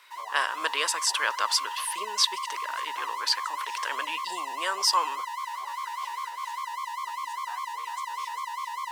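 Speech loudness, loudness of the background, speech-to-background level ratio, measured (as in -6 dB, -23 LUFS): -28.0 LUFS, -34.5 LUFS, 6.5 dB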